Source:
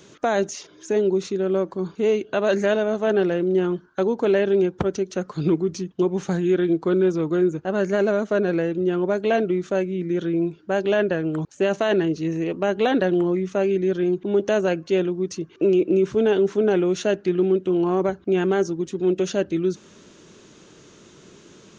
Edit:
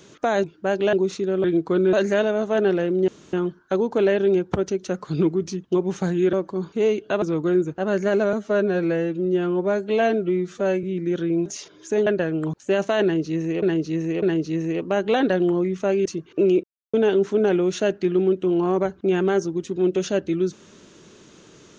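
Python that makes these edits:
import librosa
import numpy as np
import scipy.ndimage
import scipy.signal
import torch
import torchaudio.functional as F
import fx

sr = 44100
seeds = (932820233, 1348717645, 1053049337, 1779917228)

y = fx.edit(x, sr, fx.swap(start_s=0.44, length_s=0.61, other_s=10.49, other_length_s=0.49),
    fx.swap(start_s=1.56, length_s=0.89, other_s=6.6, other_length_s=0.49),
    fx.insert_room_tone(at_s=3.6, length_s=0.25),
    fx.stretch_span(start_s=8.2, length_s=1.67, factor=1.5),
    fx.repeat(start_s=11.94, length_s=0.6, count=3),
    fx.cut(start_s=13.77, length_s=1.52),
    fx.silence(start_s=15.87, length_s=0.3), tone=tone)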